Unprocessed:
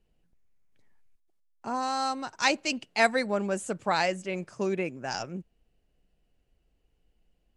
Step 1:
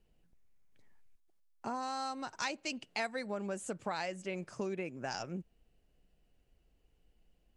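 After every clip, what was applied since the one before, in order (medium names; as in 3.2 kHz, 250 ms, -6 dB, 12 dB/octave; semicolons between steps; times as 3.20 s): compression 4:1, threshold -36 dBFS, peak gain reduction 16 dB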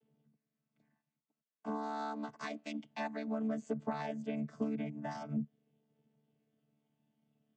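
vocoder on a held chord bare fifth, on D3; trim +1.5 dB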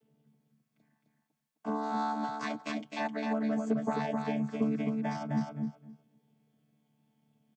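feedback delay 260 ms, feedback 16%, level -4 dB; trim +5 dB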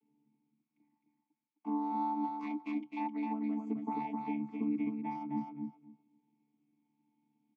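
vowel filter u; trim +6 dB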